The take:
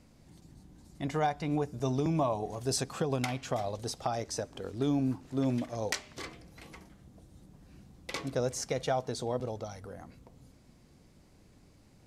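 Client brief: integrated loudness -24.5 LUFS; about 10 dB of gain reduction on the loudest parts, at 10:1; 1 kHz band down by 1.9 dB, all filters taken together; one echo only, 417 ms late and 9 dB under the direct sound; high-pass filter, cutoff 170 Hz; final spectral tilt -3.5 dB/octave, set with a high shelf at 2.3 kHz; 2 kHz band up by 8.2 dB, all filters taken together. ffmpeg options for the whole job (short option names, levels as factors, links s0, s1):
-af "highpass=170,equalizer=f=1000:t=o:g=-5.5,equalizer=f=2000:t=o:g=8.5,highshelf=f=2300:g=5,acompressor=threshold=0.02:ratio=10,aecho=1:1:417:0.355,volume=5.31"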